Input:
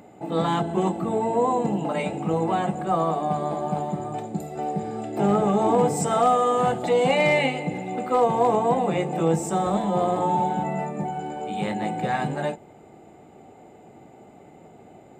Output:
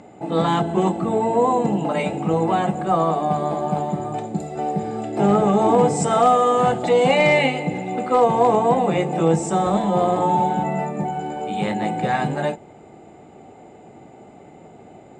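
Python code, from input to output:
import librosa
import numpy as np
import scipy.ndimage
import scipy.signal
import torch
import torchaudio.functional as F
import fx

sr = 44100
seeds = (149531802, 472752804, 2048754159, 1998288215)

y = scipy.signal.sosfilt(scipy.signal.butter(4, 8600.0, 'lowpass', fs=sr, output='sos'), x)
y = y * librosa.db_to_amplitude(4.0)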